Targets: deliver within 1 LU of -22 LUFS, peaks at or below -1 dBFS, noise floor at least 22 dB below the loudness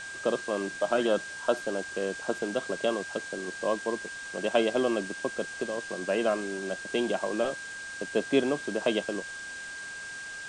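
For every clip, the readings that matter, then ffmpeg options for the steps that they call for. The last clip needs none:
steady tone 1.6 kHz; tone level -38 dBFS; noise floor -40 dBFS; noise floor target -53 dBFS; loudness -30.5 LUFS; peak level -10.5 dBFS; loudness target -22.0 LUFS
-> -af "bandreject=f=1600:w=30"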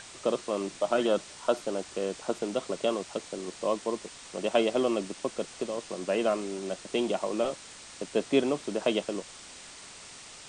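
steady tone not found; noise floor -48 dBFS; noise floor target -53 dBFS
-> -af "afftdn=nr=6:nf=-48"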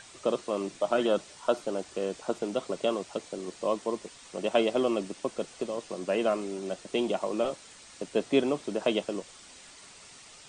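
noise floor -51 dBFS; noise floor target -53 dBFS
-> -af "afftdn=nr=6:nf=-51"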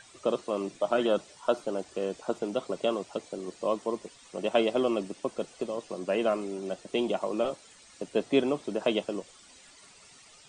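noise floor -55 dBFS; loudness -31.0 LUFS; peak level -11.0 dBFS; loudness target -22.0 LUFS
-> -af "volume=2.82"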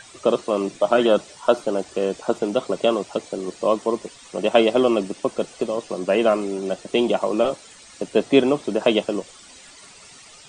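loudness -22.0 LUFS; peak level -2.0 dBFS; noise floor -46 dBFS

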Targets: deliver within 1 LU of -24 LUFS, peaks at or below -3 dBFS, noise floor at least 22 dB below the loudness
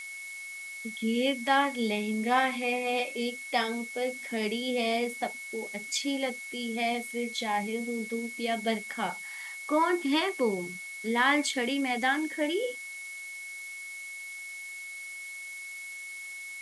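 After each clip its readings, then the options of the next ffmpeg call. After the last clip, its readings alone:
steady tone 2.2 kHz; tone level -39 dBFS; noise floor -42 dBFS; noise floor target -53 dBFS; loudness -31.0 LUFS; peak level -12.5 dBFS; loudness target -24.0 LUFS
-> -af "bandreject=f=2200:w=30"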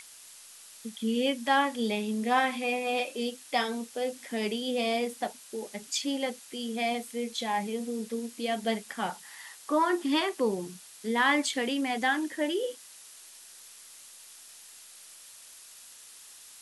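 steady tone not found; noise floor -51 dBFS; noise floor target -52 dBFS
-> -af "afftdn=nr=6:nf=-51"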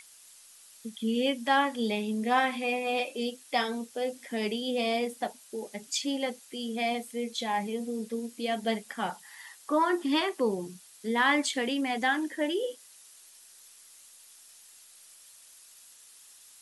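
noise floor -55 dBFS; loudness -30.0 LUFS; peak level -13.0 dBFS; loudness target -24.0 LUFS
-> -af "volume=2"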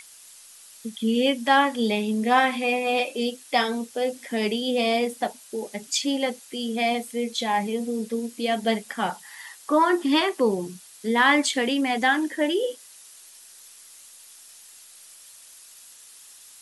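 loudness -24.0 LUFS; peak level -7.0 dBFS; noise floor -49 dBFS

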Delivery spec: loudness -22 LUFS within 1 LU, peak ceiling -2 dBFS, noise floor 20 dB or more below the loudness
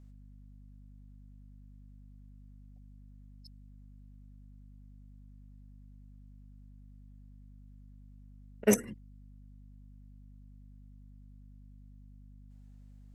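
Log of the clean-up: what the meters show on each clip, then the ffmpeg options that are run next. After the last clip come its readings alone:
hum 50 Hz; highest harmonic 250 Hz; hum level -51 dBFS; loudness -30.5 LUFS; peak level -10.5 dBFS; loudness target -22.0 LUFS
-> -af "bandreject=f=50:t=h:w=6,bandreject=f=100:t=h:w=6,bandreject=f=150:t=h:w=6,bandreject=f=200:t=h:w=6,bandreject=f=250:t=h:w=6"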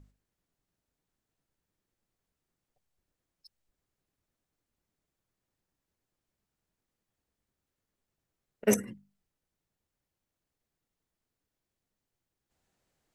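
hum not found; loudness -29.5 LUFS; peak level -11.0 dBFS; loudness target -22.0 LUFS
-> -af "volume=2.37"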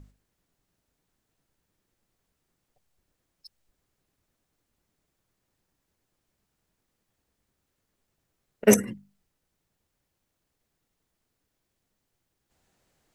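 loudness -22.0 LUFS; peak level -3.5 dBFS; noise floor -81 dBFS

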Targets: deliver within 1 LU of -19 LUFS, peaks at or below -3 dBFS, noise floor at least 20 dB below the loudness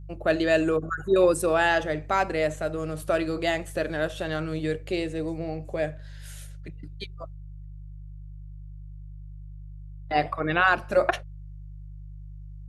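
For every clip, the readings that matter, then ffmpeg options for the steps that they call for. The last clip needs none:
hum 50 Hz; highest harmonic 150 Hz; hum level -38 dBFS; loudness -26.0 LUFS; peak level -8.0 dBFS; loudness target -19.0 LUFS
-> -af "bandreject=f=50:t=h:w=4,bandreject=f=100:t=h:w=4,bandreject=f=150:t=h:w=4"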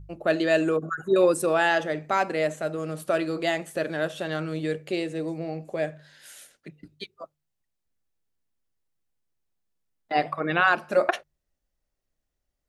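hum not found; loudness -26.0 LUFS; peak level -8.0 dBFS; loudness target -19.0 LUFS
-> -af "volume=2.24,alimiter=limit=0.708:level=0:latency=1"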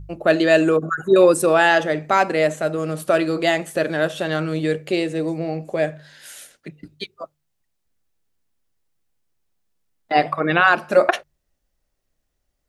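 loudness -19.0 LUFS; peak level -3.0 dBFS; noise floor -74 dBFS

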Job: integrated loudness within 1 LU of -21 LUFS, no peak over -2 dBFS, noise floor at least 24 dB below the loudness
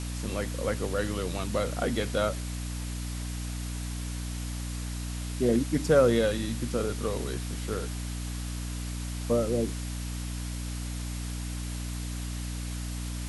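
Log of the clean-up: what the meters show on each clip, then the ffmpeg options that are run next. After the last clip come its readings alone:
hum 60 Hz; highest harmonic 300 Hz; hum level -32 dBFS; noise floor -35 dBFS; noise floor target -55 dBFS; loudness -31.0 LUFS; peak level -10.5 dBFS; loudness target -21.0 LUFS
-> -af "bandreject=f=60:t=h:w=6,bandreject=f=120:t=h:w=6,bandreject=f=180:t=h:w=6,bandreject=f=240:t=h:w=6,bandreject=f=300:t=h:w=6"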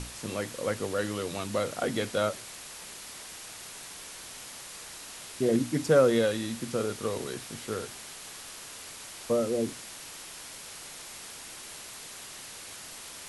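hum not found; noise floor -45 dBFS; noise floor target -57 dBFS
-> -af "afftdn=nr=12:nf=-45"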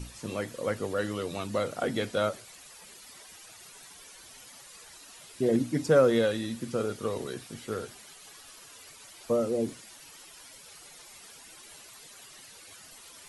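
noise floor -51 dBFS; noise floor target -54 dBFS
-> -af "afftdn=nr=6:nf=-51"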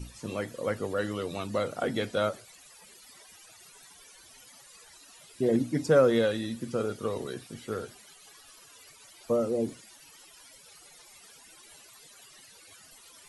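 noise floor -54 dBFS; loudness -29.5 LUFS; peak level -11.5 dBFS; loudness target -21.0 LUFS
-> -af "volume=2.66"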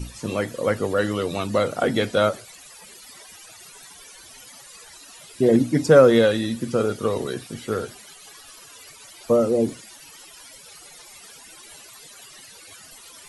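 loudness -21.0 LUFS; peak level -3.0 dBFS; noise floor -46 dBFS

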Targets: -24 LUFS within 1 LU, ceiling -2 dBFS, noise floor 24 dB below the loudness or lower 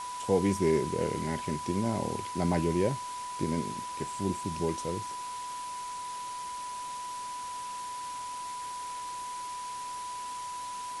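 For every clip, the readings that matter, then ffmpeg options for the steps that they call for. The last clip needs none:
steady tone 990 Hz; tone level -36 dBFS; noise floor -39 dBFS; noise floor target -58 dBFS; loudness -33.5 LUFS; peak level -13.5 dBFS; loudness target -24.0 LUFS
-> -af "bandreject=f=990:w=30"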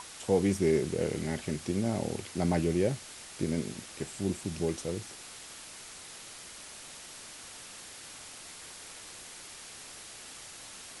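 steady tone not found; noise floor -48 dBFS; noise floor target -59 dBFS
-> -af "afftdn=nr=11:nf=-48"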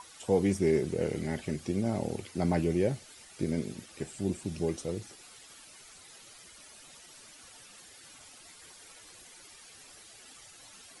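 noise floor -54 dBFS; noise floor target -56 dBFS
-> -af "afftdn=nr=6:nf=-54"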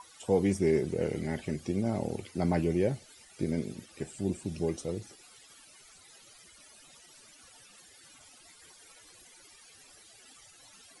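noise floor -57 dBFS; loudness -32.0 LUFS; peak level -14.0 dBFS; loudness target -24.0 LUFS
-> -af "volume=2.51"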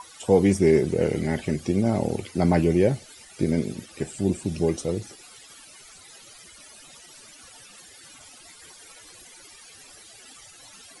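loudness -24.0 LUFS; peak level -6.0 dBFS; noise floor -49 dBFS

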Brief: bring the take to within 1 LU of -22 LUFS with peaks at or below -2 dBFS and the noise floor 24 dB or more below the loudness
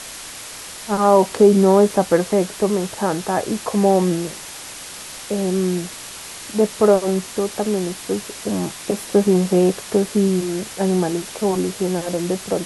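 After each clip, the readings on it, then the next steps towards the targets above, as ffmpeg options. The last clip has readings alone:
noise floor -35 dBFS; noise floor target -43 dBFS; loudness -19.0 LUFS; peak level -2.5 dBFS; loudness target -22.0 LUFS
-> -af "afftdn=nr=8:nf=-35"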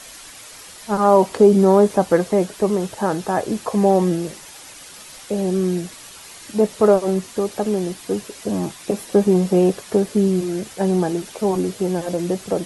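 noise floor -40 dBFS; noise floor target -44 dBFS
-> -af "afftdn=nr=6:nf=-40"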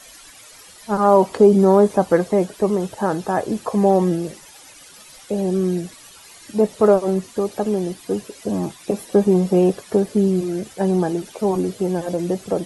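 noise floor -44 dBFS; loudness -19.5 LUFS; peak level -2.5 dBFS; loudness target -22.0 LUFS
-> -af "volume=0.75"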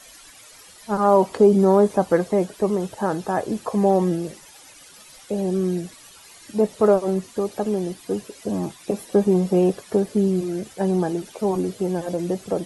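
loudness -22.0 LUFS; peak level -5.0 dBFS; noise floor -47 dBFS

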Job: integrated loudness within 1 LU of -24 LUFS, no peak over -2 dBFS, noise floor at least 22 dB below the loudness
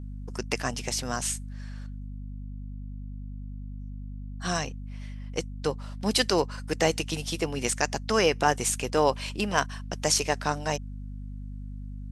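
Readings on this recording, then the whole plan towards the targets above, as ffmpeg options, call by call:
hum 50 Hz; highest harmonic 250 Hz; hum level -35 dBFS; loudness -28.0 LUFS; peak level -7.0 dBFS; loudness target -24.0 LUFS
-> -af "bandreject=f=50:t=h:w=4,bandreject=f=100:t=h:w=4,bandreject=f=150:t=h:w=4,bandreject=f=200:t=h:w=4,bandreject=f=250:t=h:w=4"
-af "volume=1.58"

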